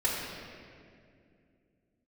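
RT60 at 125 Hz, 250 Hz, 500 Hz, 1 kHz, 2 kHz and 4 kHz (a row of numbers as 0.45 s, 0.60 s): 3.2 s, 3.5 s, 2.8 s, 2.0 s, 2.0 s, 1.5 s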